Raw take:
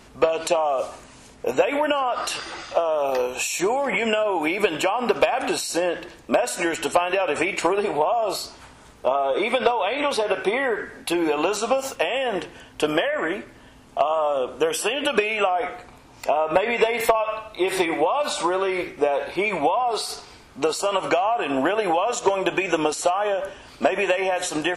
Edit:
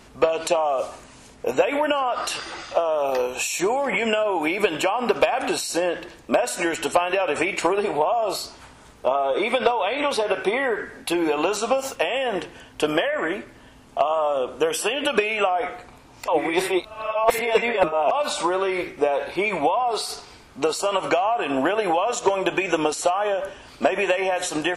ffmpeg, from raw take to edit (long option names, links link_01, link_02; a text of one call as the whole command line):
ffmpeg -i in.wav -filter_complex "[0:a]asplit=3[link_01][link_02][link_03];[link_01]atrim=end=16.282[link_04];[link_02]atrim=start=16.278:end=18.112,asetpts=PTS-STARTPTS,areverse[link_05];[link_03]atrim=start=18.108[link_06];[link_04][link_05]acrossfade=duration=0.004:curve1=hsin:curve2=hsin[link_07];[link_07][link_06]acrossfade=duration=0.004:curve1=hsin:curve2=hsin" out.wav